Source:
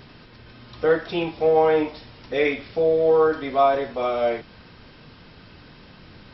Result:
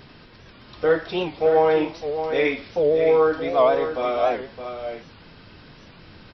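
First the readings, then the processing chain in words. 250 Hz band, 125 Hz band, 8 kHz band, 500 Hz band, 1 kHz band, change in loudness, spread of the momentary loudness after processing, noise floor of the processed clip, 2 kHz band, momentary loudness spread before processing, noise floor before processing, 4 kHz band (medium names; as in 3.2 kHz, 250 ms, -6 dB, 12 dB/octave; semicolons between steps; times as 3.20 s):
0.0 dB, -0.5 dB, no reading, +0.5 dB, 0.0 dB, 0.0 dB, 14 LU, -48 dBFS, +0.5 dB, 9 LU, -48 dBFS, +1.0 dB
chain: hum notches 60/120/180/240 Hz; on a send: delay 616 ms -9 dB; on the sum: warped record 78 rpm, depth 160 cents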